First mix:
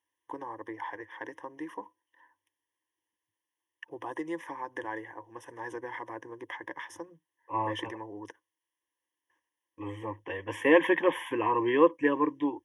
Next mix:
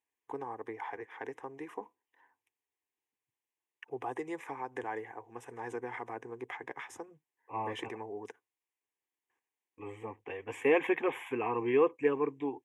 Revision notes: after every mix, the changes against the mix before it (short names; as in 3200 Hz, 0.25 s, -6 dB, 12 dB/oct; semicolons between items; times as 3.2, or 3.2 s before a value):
second voice -4.0 dB; master: remove ripple EQ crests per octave 1.2, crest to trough 13 dB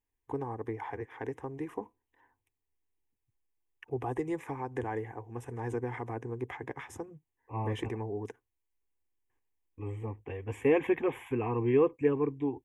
second voice -3.0 dB; master: remove weighting filter A